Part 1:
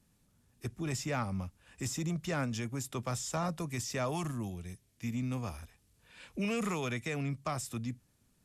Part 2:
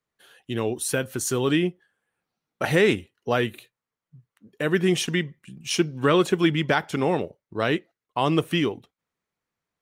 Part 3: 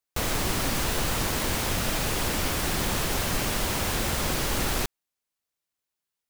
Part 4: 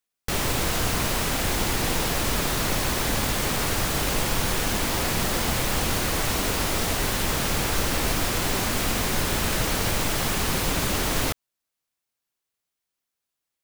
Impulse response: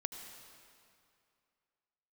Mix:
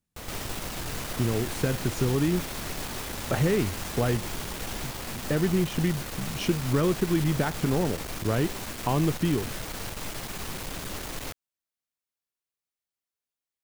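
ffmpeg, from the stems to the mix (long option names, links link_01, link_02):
-filter_complex "[0:a]volume=-14dB[link_01];[1:a]aemphasis=mode=reproduction:type=riaa,acompressor=threshold=-23dB:ratio=3,adelay=700,volume=-1dB[link_02];[2:a]volume=-13dB[link_03];[3:a]aeval=exprs='(tanh(20*val(0)+0.6)-tanh(0.6))/20':channel_layout=same,volume=-6dB[link_04];[link_01][link_02][link_03][link_04]amix=inputs=4:normalize=0"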